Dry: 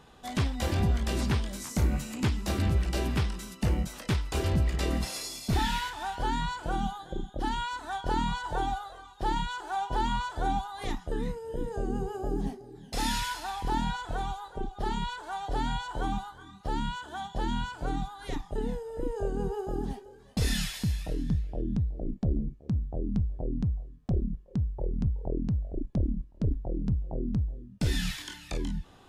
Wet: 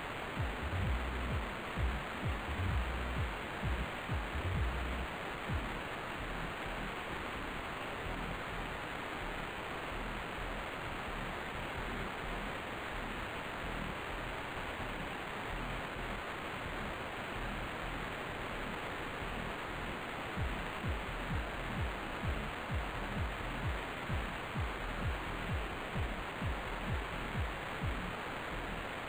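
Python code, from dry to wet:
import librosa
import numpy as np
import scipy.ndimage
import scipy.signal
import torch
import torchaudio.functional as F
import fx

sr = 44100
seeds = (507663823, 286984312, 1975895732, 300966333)

y = scipy.signal.sosfilt(scipy.signal.butter(2, 76.0, 'highpass', fs=sr, output='sos'), x)
y = fx.tone_stack(y, sr, knobs='10-0-1')
y = fx.quant_dither(y, sr, seeds[0], bits=6, dither='triangular')
y = fx.air_absorb(y, sr, metres=71.0)
y = np.interp(np.arange(len(y)), np.arange(len(y))[::8], y[::8])
y = y * 10.0 ** (2.5 / 20.0)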